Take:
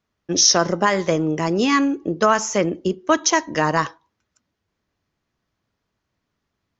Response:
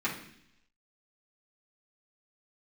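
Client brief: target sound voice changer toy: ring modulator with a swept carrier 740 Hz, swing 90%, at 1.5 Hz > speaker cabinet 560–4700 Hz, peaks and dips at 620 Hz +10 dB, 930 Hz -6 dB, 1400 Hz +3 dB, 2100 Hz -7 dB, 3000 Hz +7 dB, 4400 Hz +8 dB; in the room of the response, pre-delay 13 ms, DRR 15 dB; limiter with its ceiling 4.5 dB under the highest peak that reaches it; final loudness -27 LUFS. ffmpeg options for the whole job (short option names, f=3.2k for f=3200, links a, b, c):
-filter_complex "[0:a]alimiter=limit=-7.5dB:level=0:latency=1,asplit=2[a][b];[1:a]atrim=start_sample=2205,adelay=13[c];[b][c]afir=irnorm=-1:irlink=0,volume=-23dB[d];[a][d]amix=inputs=2:normalize=0,aeval=exprs='val(0)*sin(2*PI*740*n/s+740*0.9/1.5*sin(2*PI*1.5*n/s))':c=same,highpass=560,equalizer=f=620:t=q:w=4:g=10,equalizer=f=930:t=q:w=4:g=-6,equalizer=f=1.4k:t=q:w=4:g=3,equalizer=f=2.1k:t=q:w=4:g=-7,equalizer=f=3k:t=q:w=4:g=7,equalizer=f=4.4k:t=q:w=4:g=8,lowpass=f=4.7k:w=0.5412,lowpass=f=4.7k:w=1.3066,volume=-3.5dB"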